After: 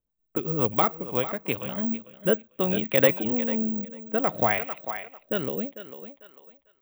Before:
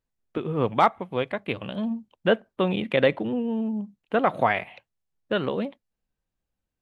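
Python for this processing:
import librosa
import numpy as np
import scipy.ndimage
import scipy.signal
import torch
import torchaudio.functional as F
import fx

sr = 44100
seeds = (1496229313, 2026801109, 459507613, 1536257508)

p1 = fx.env_lowpass(x, sr, base_hz=1100.0, full_db=-20.0)
p2 = (np.kron(p1[::2], np.eye(2)[0]) * 2)[:len(p1)]
p3 = p2 + fx.echo_thinned(p2, sr, ms=447, feedback_pct=23, hz=350.0, wet_db=-11, dry=0)
y = fx.rotary_switch(p3, sr, hz=7.5, then_hz=0.6, switch_at_s=0.64)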